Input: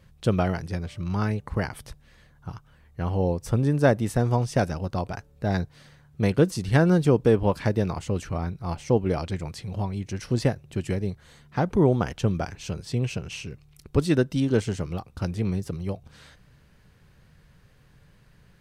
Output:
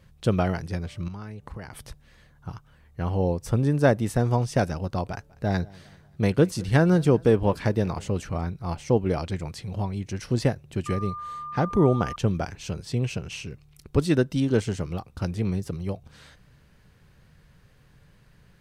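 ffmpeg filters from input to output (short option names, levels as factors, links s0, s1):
-filter_complex "[0:a]asettb=1/sr,asplit=3[s0][s1][s2];[s0]atrim=end=1.084[s3];[s1]atrim=start=1.08:end=1.82,asetpts=PTS-STARTPTS,afade=t=in:d=0.004:c=qsin,afade=t=out:st=0.736:d=0.004:c=qsin,acompressor=threshold=0.02:ratio=6:attack=3.2:release=140:knee=1:detection=peak[s4];[s2]atrim=start=1.816[s5];[s3][s4]acrossfade=d=0.004:c1=hsin:c2=qsin[s6];[s6][s5]acrossfade=d=0.004:c1=qsin:c2=hsin,asettb=1/sr,asplit=3[s7][s8][s9];[s7]atrim=end=5.104[s10];[s8]atrim=start=5.1:end=8.41,asetpts=PTS-STARTPTS,afade=t=in:d=0.004:c=qsin,afade=t=out:st=3.306:d=0.004:c=qsin,aecho=1:1:195|390|585:0.0668|0.0294|0.0129,atrim=end_sample=145971[s11];[s9]atrim=start=8.406[s12];[s10][s11]acrossfade=d=0.004:c1=hsin:c2=qsin[s13];[s13][s12]acrossfade=d=0.004:c1=qsin:c2=hsin,asettb=1/sr,asplit=3[s14][s15][s16];[s14]atrim=end=10.864[s17];[s15]atrim=start=10.86:end=12.16,asetpts=PTS-STARTPTS,afade=t=in:d=0.004:c=qsin,afade=t=out:st=1.296:d=0.004:c=qsin,aeval=exprs='val(0)+0.0224*sin(2*PI*1200*n/s)':c=same[s18];[s16]atrim=start=12.156[s19];[s17][s18]acrossfade=d=0.004:c1=hsin:c2=qsin[s20];[s20][s19]acrossfade=d=0.004:c1=qsin:c2=hsin"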